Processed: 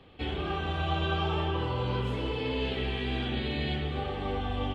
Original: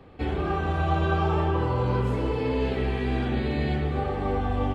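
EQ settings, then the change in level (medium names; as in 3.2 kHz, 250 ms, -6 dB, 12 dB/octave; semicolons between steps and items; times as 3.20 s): peaking EQ 3.2 kHz +13.5 dB 0.78 oct; -6.0 dB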